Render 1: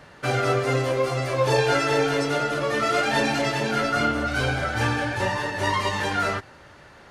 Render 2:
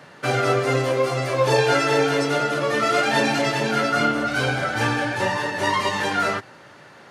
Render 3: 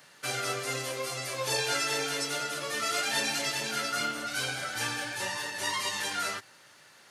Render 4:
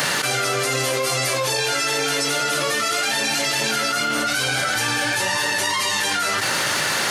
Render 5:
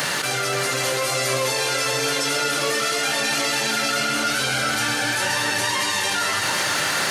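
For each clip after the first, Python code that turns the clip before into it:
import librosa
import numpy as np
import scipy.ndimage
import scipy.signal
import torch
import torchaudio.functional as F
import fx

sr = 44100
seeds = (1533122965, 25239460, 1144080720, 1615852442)

y1 = scipy.signal.sosfilt(scipy.signal.butter(4, 120.0, 'highpass', fs=sr, output='sos'), x)
y1 = y1 * 10.0 ** (2.5 / 20.0)
y2 = librosa.effects.preemphasis(y1, coef=0.9, zi=[0.0])
y2 = y2 * 10.0 ** (2.5 / 20.0)
y3 = fx.env_flatten(y2, sr, amount_pct=100)
y3 = y3 * 10.0 ** (5.0 / 20.0)
y4 = fx.echo_multitap(y3, sr, ms=(132, 270, 527, 779), db=(-11.0, -13.0, -6.5, -8.0))
y4 = y4 * 10.0 ** (-2.5 / 20.0)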